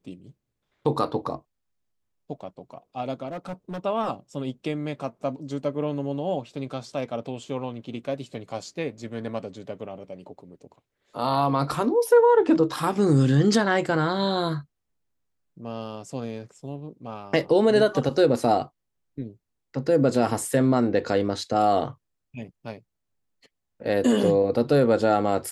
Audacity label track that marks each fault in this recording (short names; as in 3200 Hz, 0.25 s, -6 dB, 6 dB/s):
3.270000	3.790000	clipped -29 dBFS